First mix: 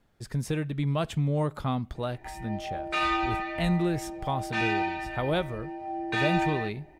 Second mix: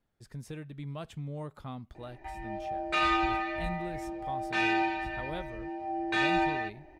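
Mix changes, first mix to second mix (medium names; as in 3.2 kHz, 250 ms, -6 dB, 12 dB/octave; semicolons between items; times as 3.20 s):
speech -11.5 dB; reverb: off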